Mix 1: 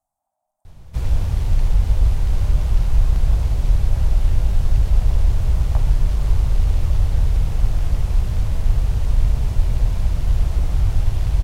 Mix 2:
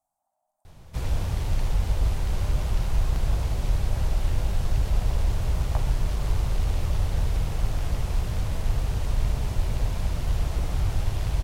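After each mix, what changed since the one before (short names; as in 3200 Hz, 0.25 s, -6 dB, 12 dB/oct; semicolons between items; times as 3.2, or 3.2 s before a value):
master: add low shelf 130 Hz -9 dB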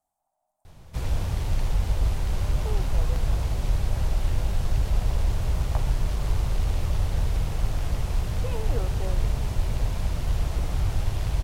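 speech: unmuted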